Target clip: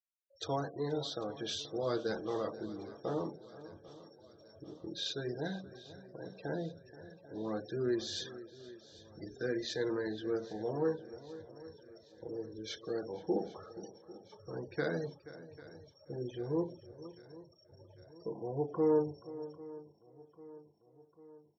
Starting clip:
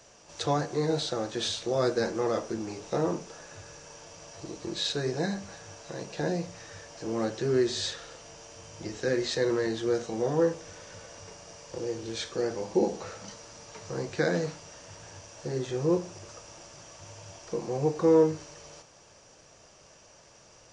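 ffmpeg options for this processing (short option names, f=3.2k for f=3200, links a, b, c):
-filter_complex "[0:a]afftfilt=real='re*gte(hypot(re,im),0.0158)':imag='im*gte(hypot(re,im),0.0158)':win_size=1024:overlap=0.75,lowshelf=f=170:g=-3,asplit=2[a][b];[b]aecho=0:1:764|1528|2292|3056|3820:0.112|0.0651|0.0377|0.0219|0.0127[c];[a][c]amix=inputs=2:normalize=0,asetrate=42336,aresample=44100,asplit=2[d][e];[e]adelay=478.1,volume=-16dB,highshelf=f=4k:g=-10.8[f];[d][f]amix=inputs=2:normalize=0,volume=-7.5dB"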